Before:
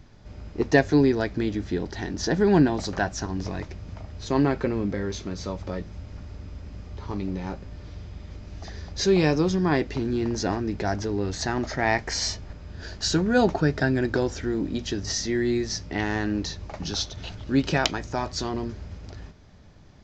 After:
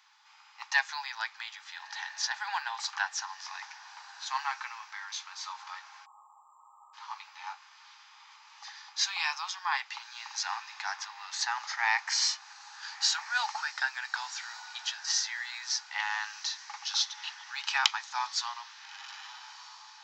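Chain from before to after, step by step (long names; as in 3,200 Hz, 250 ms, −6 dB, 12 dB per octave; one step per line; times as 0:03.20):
Chebyshev high-pass with heavy ripple 820 Hz, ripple 3 dB
feedback delay with all-pass diffusion 1,345 ms, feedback 44%, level −16 dB
time-frequency box erased 0:06.05–0:06.94, 1,300–7,200 Hz
level +1.5 dB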